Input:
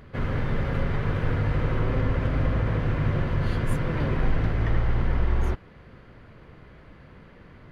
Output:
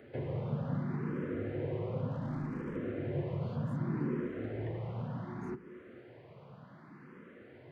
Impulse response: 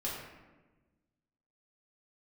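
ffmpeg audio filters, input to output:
-filter_complex "[0:a]acrossover=split=650|1800[s0][s1][s2];[s0]acompressor=threshold=0.0631:ratio=4[s3];[s1]acompressor=threshold=0.00251:ratio=4[s4];[s2]acompressor=threshold=0.00178:ratio=4[s5];[s3][s4][s5]amix=inputs=3:normalize=0,highpass=f=130:w=0.5412,highpass=f=130:w=1.3066,highshelf=f=2300:g=-9.5,asettb=1/sr,asplit=3[s6][s7][s8];[s6]atrim=end=2.114[s9];[s7]atrim=start=2.11:end=2.76,asetpts=PTS-STARTPTS,afade=t=in:d=0.004:c=qsin,afade=t=out:st=0.646:d=0.004:c=qsin,volume=39.8,asoftclip=hard,volume=0.0251[s10];[s8]atrim=start=2.756[s11];[s9][s10]acrossfade=d=0.004:c1=hsin:c2=qsin[s12];[s12][s11]acrossfade=d=0.004:c1=qsin:c2=hsin,asplit=2[s13][s14];[s14]equalizer=f=360:t=o:w=0.2:g=14[s15];[1:a]atrim=start_sample=2205[s16];[s15][s16]afir=irnorm=-1:irlink=0,volume=0.15[s17];[s13][s17]amix=inputs=2:normalize=0,asplit=2[s18][s19];[s19]afreqshift=0.67[s20];[s18][s20]amix=inputs=2:normalize=1"

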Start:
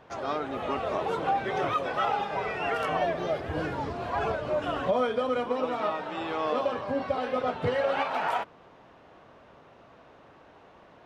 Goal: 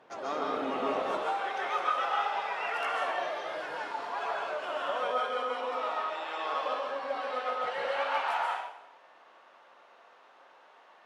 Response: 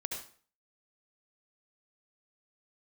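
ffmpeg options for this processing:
-filter_complex "[0:a]asetnsamples=n=441:p=0,asendcmd='1.02 highpass f 750',highpass=250[s0];[1:a]atrim=start_sample=2205,asetrate=23373,aresample=44100[s1];[s0][s1]afir=irnorm=-1:irlink=0,volume=0.531"

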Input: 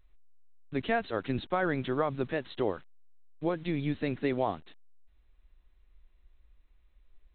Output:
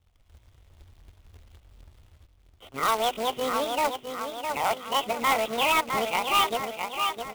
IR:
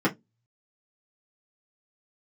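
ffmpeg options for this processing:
-filter_complex "[0:a]areverse,aeval=exprs='0.2*(cos(1*acos(clip(val(0)/0.2,-1,1)))-cos(1*PI/2))+0.0224*(cos(4*acos(clip(val(0)/0.2,-1,1)))-cos(4*PI/2))':c=same,acrossover=split=440|570[s0][s1][s2];[s0]acompressor=threshold=0.00631:ratio=6[s3];[s3][s1][s2]amix=inputs=3:normalize=0,asetrate=76340,aresample=44100,atempo=0.577676,highpass=f=58:p=1,bandreject=f=50:t=h:w=6,bandreject=f=100:t=h:w=6,bandreject=f=150:t=h:w=6,bandreject=f=200:t=h:w=6,bandreject=f=250:t=h:w=6,bandreject=f=300:t=h:w=6,bandreject=f=350:t=h:w=6,bandreject=f=400:t=h:w=6,aecho=1:1:659|1318|1977|2636|3295:0.398|0.183|0.0842|0.0388|0.0178,aresample=8000,asoftclip=type=tanh:threshold=0.0355,aresample=44100,asuperstop=centerf=1700:order=4:qfactor=4.3,acrusher=bits=2:mode=log:mix=0:aa=0.000001,dynaudnorm=f=100:g=5:m=3.98"

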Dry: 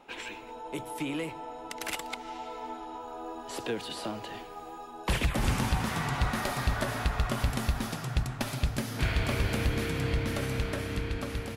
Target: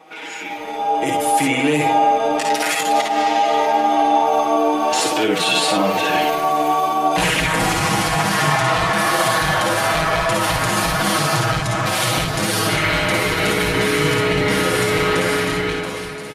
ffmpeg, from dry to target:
-filter_complex "[0:a]atempo=0.77,highpass=f=350:p=1,acompressor=threshold=0.0112:ratio=6,alimiter=level_in=3.76:limit=0.0631:level=0:latency=1:release=25,volume=0.266,aecho=1:1:5.8:0.89,asplit=2[s0][s1];[s1]aecho=0:1:50|61:0.631|0.531[s2];[s0][s2]amix=inputs=2:normalize=0,asetrate=40517,aresample=44100,dynaudnorm=f=160:g=11:m=5.01,volume=2.66"

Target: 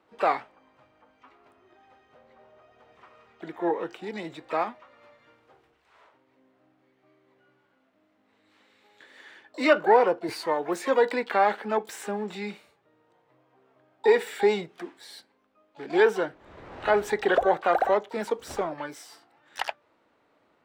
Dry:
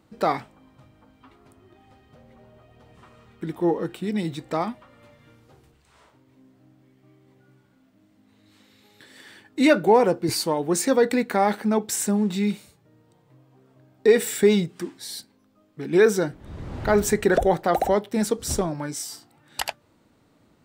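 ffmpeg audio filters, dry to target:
-filter_complex "[0:a]acrossover=split=380 3200:gain=0.126 1 0.126[s0][s1][s2];[s0][s1][s2]amix=inputs=3:normalize=0,asplit=2[s3][s4];[s4]asetrate=88200,aresample=44100,atempo=0.5,volume=0.224[s5];[s3][s5]amix=inputs=2:normalize=0"

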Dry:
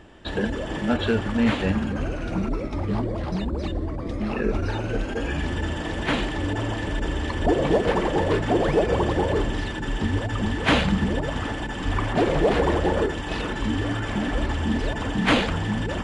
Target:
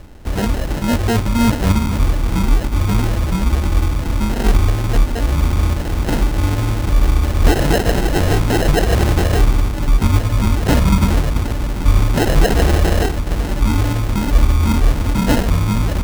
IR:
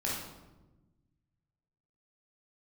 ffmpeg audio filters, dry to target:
-af "aemphasis=mode=reproduction:type=bsi,acrusher=samples=38:mix=1:aa=0.000001,volume=1.12"

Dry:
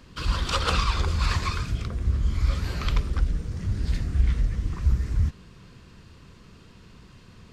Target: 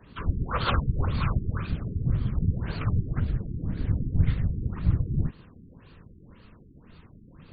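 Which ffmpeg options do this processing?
-af "afftfilt=real='hypot(re,im)*cos(2*PI*random(0))':imag='hypot(re,im)*sin(2*PI*random(1))':win_size=512:overlap=0.75,afftfilt=real='re*lt(b*sr/1024,420*pow(4800/420,0.5+0.5*sin(2*PI*1.9*pts/sr)))':imag='im*lt(b*sr/1024,420*pow(4800/420,0.5+0.5*sin(2*PI*1.9*pts/sr)))':win_size=1024:overlap=0.75,volume=1.78"

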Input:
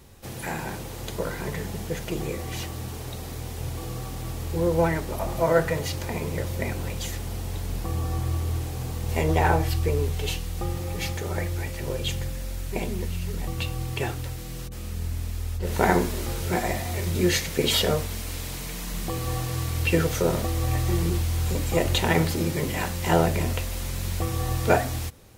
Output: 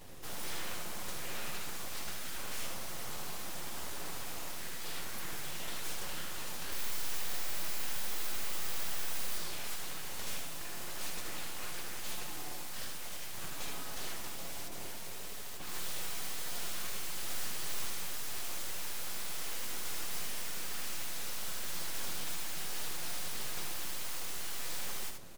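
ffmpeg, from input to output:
-filter_complex "[0:a]asettb=1/sr,asplit=3[s0][s1][s2];[s0]atrim=end=6.724[s3];[s1]atrim=start=6.72:end=9.37,asetpts=PTS-STARTPTS,afade=t=in:d=0.004:c=qsin,afade=t=out:st=2.646:d=0.004:c=qsin,aemphasis=mode=production:type=riaa[s4];[s2]atrim=start=9.366[s5];[s3][s4]acrossfade=d=0.004:c1=hsin:c2=qsin[s6];[s6][s5]acrossfade=d=0.004:c1=qsin:c2=hsin,afftfilt=real='re*lt(hypot(re,im),0.0708)':imag='im*lt(hypot(re,im),0.0708)':win_size=1024:overlap=0.75,aecho=1:1:5.6:0.64,aeval=exprs='abs(val(0))':c=same,flanger=delay=6.1:depth=7.2:regen=-48:speed=1.7:shape=sinusoidal,asoftclip=type=tanh:threshold=0.0211,aecho=1:1:77:0.531,volume=1.58"

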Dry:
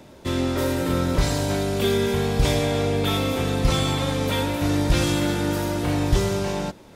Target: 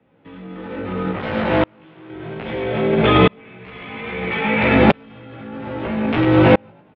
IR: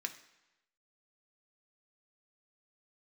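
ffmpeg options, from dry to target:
-filter_complex "[0:a]asettb=1/sr,asplit=3[s0][s1][s2];[s0]atrim=end=3.394[s3];[s1]atrim=start=3.39:end=4.75,asetpts=PTS-STARTPTS,afade=t=in:d=0.004:c=qsin,afade=t=out:st=1.356:d=0.004:c=qsin,equalizer=f=2300:t=o:w=0.6:g=12.5[s4];[s2]atrim=start=4.746[s5];[s3][s4]acrossfade=d=0.004:c1=hsin:c2=qsin[s6];[s6][s5]acrossfade=d=0.004:c1=qsin:c2=hsin,asplit=2[s7][s8];[s8]acompressor=threshold=0.0282:ratio=12,volume=1.26[s9];[s7][s9]amix=inputs=2:normalize=0,aeval=exprs='(mod(2.66*val(0)+1,2)-1)/2.66':c=same,asplit=5[s10][s11][s12][s13][s14];[s11]adelay=102,afreqshift=48,volume=0.376[s15];[s12]adelay=204,afreqshift=96,volume=0.14[s16];[s13]adelay=306,afreqshift=144,volume=0.0513[s17];[s14]adelay=408,afreqshift=192,volume=0.0191[s18];[s10][s15][s16][s17][s18]amix=inputs=5:normalize=0,asettb=1/sr,asplit=3[s19][s20][s21];[s19]atrim=end=1.114[s22];[s20]atrim=start=1.11:end=2.1,asetpts=PTS-STARTPTS,afade=t=in:d=0.004:c=qsin,afade=t=out:st=0.986:d=0.004:c=qsin,volume=25.1,asoftclip=hard,volume=0.0398[s23];[s21]atrim=start=2.096[s24];[s22][s23]acrossfade=d=0.004:c1=hsin:c2=qsin[s25];[s25][s24]acrossfade=d=0.004:c1=qsin:c2=hsin,flanger=delay=15:depth=2.2:speed=1.9,highpass=f=190:t=q:w=0.5412,highpass=f=190:t=q:w=1.307,lowpass=f=3000:t=q:w=0.5176,lowpass=f=3000:t=q:w=0.7071,lowpass=f=3000:t=q:w=1.932,afreqshift=-76,alimiter=level_in=9.44:limit=0.891:release=50:level=0:latency=1,aeval=exprs='val(0)*pow(10,-37*if(lt(mod(-0.61*n/s,1),2*abs(-0.61)/1000),1-mod(-0.61*n/s,1)/(2*abs(-0.61)/1000),(mod(-0.61*n/s,1)-2*abs(-0.61)/1000)/(1-2*abs(-0.61)/1000))/20)':c=same"

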